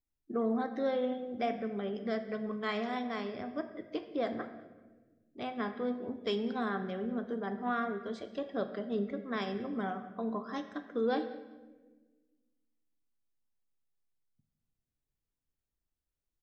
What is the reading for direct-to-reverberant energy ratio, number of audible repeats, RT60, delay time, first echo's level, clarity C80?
7.5 dB, 2, 1.3 s, 193 ms, −20.5 dB, 11.5 dB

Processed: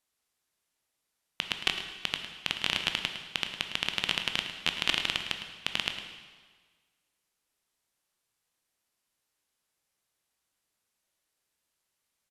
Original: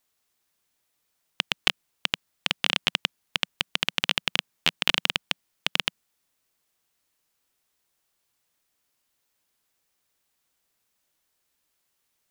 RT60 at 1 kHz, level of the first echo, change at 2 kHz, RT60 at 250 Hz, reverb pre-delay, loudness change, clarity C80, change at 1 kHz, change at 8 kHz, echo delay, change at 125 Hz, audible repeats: 1.5 s, −11.5 dB, −4.0 dB, 1.5 s, 8 ms, −4.5 dB, 7.0 dB, −4.5 dB, −4.5 dB, 107 ms, −4.5 dB, 1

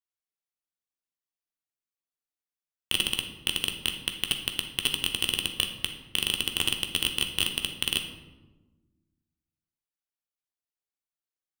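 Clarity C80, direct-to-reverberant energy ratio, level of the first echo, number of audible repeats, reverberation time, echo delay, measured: 10.0 dB, 3.5 dB, no echo audible, no echo audible, 1.2 s, no echo audible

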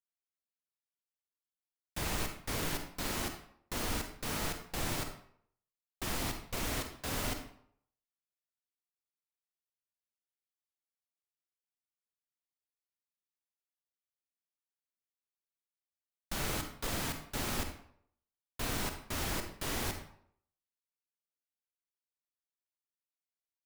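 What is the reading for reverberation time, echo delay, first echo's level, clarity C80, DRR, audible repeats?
0.65 s, no echo audible, no echo audible, 10.5 dB, 5.5 dB, no echo audible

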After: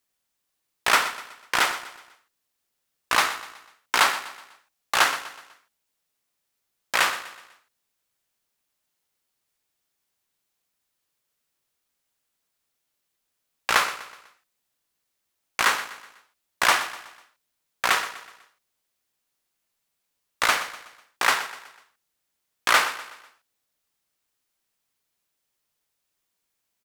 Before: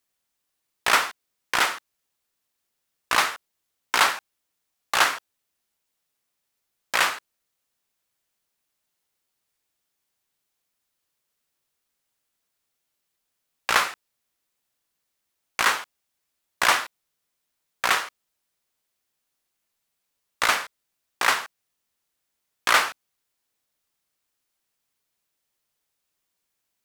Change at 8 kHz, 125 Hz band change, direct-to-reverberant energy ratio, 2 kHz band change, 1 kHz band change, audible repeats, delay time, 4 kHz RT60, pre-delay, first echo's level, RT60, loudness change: 0.0 dB, 0.0 dB, no reverb audible, 0.0 dB, 0.0 dB, 3, 124 ms, no reverb audible, no reverb audible, −14.0 dB, no reverb audible, 0.0 dB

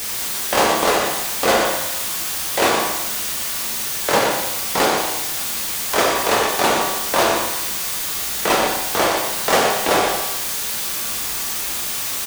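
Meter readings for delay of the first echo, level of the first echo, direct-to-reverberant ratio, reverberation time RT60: 121 ms, −7.5 dB, −2.5 dB, 1.0 s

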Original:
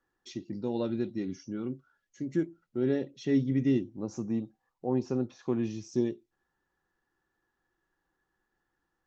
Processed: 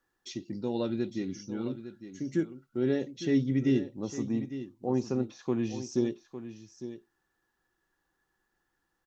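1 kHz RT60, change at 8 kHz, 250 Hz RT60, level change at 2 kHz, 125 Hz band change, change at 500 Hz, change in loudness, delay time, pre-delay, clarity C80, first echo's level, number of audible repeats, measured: no reverb audible, can't be measured, no reverb audible, +2.5 dB, +0.5 dB, +0.5 dB, 0.0 dB, 856 ms, no reverb audible, no reverb audible, −12.0 dB, 1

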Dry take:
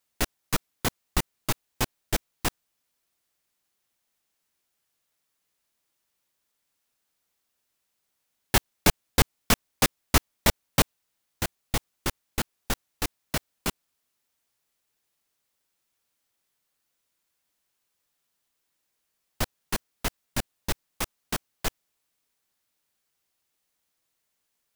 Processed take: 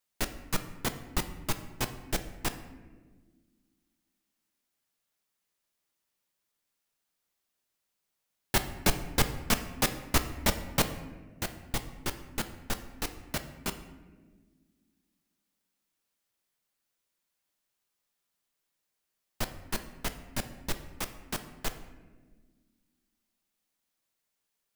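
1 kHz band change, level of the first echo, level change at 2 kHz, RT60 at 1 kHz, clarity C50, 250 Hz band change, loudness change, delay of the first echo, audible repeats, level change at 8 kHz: −4.5 dB, no echo audible, −4.5 dB, 1.1 s, 11.0 dB, −3.5 dB, −4.5 dB, no echo audible, no echo audible, −4.5 dB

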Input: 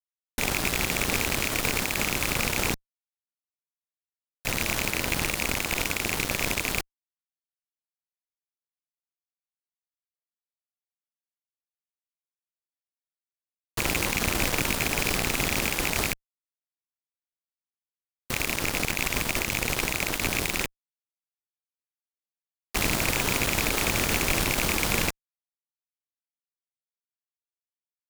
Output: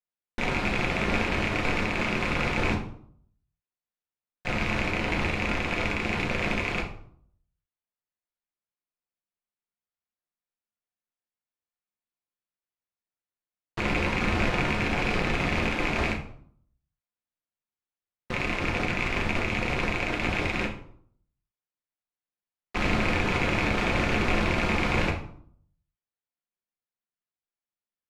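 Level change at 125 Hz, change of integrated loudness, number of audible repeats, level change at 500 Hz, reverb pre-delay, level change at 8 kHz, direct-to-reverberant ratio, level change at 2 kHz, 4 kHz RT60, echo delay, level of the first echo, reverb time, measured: +3.0 dB, −1.0 dB, no echo audible, +2.5 dB, 6 ms, −17.0 dB, 0.0 dB, 0.0 dB, 0.40 s, no echo audible, no echo audible, 0.60 s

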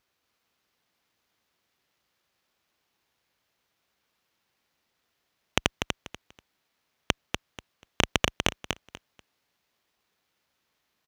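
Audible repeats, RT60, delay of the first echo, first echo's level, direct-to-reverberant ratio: 3, no reverb audible, 243 ms, −5.5 dB, no reverb audible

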